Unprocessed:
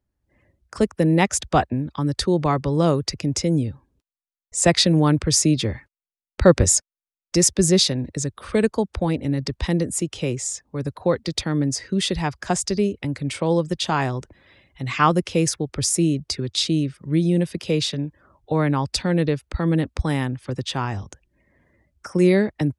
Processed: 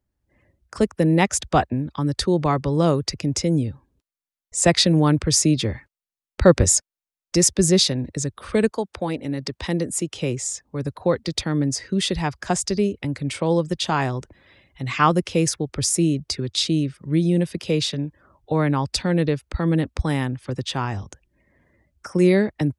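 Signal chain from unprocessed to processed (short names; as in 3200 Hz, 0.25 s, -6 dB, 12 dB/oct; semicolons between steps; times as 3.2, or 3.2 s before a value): 8.7–10.2 HPF 460 Hz -> 120 Hz 6 dB/oct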